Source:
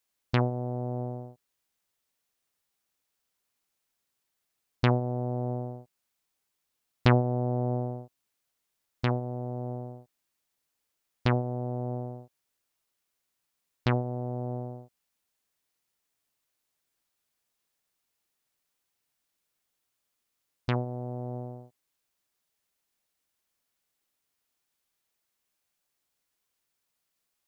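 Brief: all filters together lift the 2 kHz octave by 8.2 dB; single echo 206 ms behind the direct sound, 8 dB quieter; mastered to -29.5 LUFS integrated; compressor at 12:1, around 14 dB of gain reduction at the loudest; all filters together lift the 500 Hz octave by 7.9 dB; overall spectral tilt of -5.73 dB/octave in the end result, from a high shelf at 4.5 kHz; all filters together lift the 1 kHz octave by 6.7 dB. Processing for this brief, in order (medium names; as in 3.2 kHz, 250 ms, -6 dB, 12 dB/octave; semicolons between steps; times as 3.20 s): peaking EQ 500 Hz +8.5 dB; peaking EQ 1 kHz +3.5 dB; peaking EQ 2 kHz +7.5 dB; treble shelf 4.5 kHz +6.5 dB; compression 12:1, threshold -24 dBFS; delay 206 ms -8 dB; trim +3.5 dB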